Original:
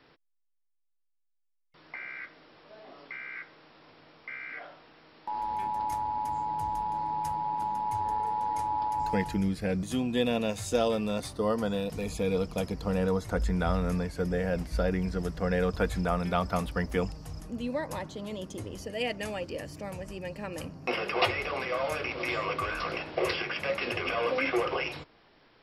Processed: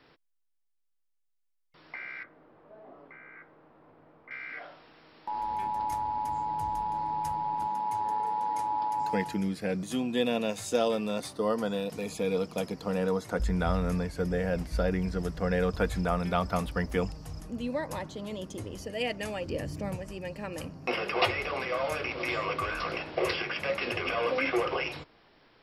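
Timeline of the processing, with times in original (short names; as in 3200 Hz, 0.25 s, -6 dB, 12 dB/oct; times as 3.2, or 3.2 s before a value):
2.23–4.31 LPF 1100 Hz
7.67–13.4 HPF 170 Hz
19.45–19.96 low shelf 330 Hz +9 dB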